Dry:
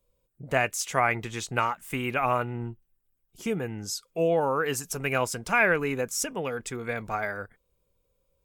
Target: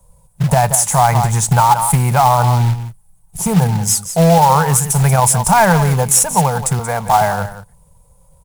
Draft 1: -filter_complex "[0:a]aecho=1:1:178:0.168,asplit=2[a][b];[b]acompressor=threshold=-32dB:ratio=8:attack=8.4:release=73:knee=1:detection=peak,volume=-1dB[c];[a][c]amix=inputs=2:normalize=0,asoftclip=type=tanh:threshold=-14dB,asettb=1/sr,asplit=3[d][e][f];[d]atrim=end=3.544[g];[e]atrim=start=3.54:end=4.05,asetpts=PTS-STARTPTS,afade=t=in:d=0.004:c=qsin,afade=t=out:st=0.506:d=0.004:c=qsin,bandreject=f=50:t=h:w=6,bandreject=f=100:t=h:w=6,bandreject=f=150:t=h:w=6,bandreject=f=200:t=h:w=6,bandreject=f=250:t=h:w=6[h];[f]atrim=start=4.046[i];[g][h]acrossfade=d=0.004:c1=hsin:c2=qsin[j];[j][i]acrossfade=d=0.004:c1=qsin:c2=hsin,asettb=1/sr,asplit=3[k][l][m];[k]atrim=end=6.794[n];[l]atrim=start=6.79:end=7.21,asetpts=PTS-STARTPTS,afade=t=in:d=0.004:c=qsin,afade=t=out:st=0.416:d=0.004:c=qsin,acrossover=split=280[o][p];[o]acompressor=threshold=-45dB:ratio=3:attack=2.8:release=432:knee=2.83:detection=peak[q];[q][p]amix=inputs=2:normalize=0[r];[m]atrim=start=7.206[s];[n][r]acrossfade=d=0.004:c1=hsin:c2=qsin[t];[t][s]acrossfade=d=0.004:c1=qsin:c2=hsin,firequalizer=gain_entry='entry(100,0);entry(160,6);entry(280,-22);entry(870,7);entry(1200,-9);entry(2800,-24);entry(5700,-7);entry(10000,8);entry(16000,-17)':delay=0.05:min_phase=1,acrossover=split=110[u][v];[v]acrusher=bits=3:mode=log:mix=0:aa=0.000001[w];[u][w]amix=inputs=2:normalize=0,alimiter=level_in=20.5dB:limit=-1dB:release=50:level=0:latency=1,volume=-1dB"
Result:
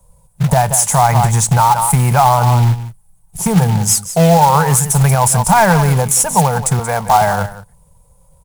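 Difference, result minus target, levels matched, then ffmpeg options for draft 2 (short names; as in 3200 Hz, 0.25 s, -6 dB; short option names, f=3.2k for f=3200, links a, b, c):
compressor: peak gain reduction -8 dB
-filter_complex "[0:a]aecho=1:1:178:0.168,asplit=2[a][b];[b]acompressor=threshold=-41dB:ratio=8:attack=8.4:release=73:knee=1:detection=peak,volume=-1dB[c];[a][c]amix=inputs=2:normalize=0,asoftclip=type=tanh:threshold=-14dB,asettb=1/sr,asplit=3[d][e][f];[d]atrim=end=3.544[g];[e]atrim=start=3.54:end=4.05,asetpts=PTS-STARTPTS,afade=t=in:d=0.004:c=qsin,afade=t=out:st=0.506:d=0.004:c=qsin,bandreject=f=50:t=h:w=6,bandreject=f=100:t=h:w=6,bandreject=f=150:t=h:w=6,bandreject=f=200:t=h:w=6,bandreject=f=250:t=h:w=6[h];[f]atrim=start=4.046[i];[g][h]acrossfade=d=0.004:c1=hsin:c2=qsin[j];[j][i]acrossfade=d=0.004:c1=qsin:c2=hsin,asettb=1/sr,asplit=3[k][l][m];[k]atrim=end=6.794[n];[l]atrim=start=6.79:end=7.21,asetpts=PTS-STARTPTS,afade=t=in:d=0.004:c=qsin,afade=t=out:st=0.416:d=0.004:c=qsin,acrossover=split=280[o][p];[o]acompressor=threshold=-45dB:ratio=3:attack=2.8:release=432:knee=2.83:detection=peak[q];[q][p]amix=inputs=2:normalize=0[r];[m]atrim=start=7.206[s];[n][r]acrossfade=d=0.004:c1=hsin:c2=qsin[t];[t][s]acrossfade=d=0.004:c1=qsin:c2=hsin,firequalizer=gain_entry='entry(100,0);entry(160,6);entry(280,-22);entry(870,7);entry(1200,-9);entry(2800,-24);entry(5700,-7);entry(10000,8);entry(16000,-17)':delay=0.05:min_phase=1,acrossover=split=110[u][v];[v]acrusher=bits=3:mode=log:mix=0:aa=0.000001[w];[u][w]amix=inputs=2:normalize=0,alimiter=level_in=20.5dB:limit=-1dB:release=50:level=0:latency=1,volume=-1dB"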